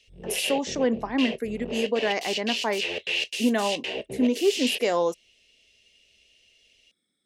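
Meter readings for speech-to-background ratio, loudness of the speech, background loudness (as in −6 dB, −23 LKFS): 3.5 dB, −27.0 LKFS, −30.5 LKFS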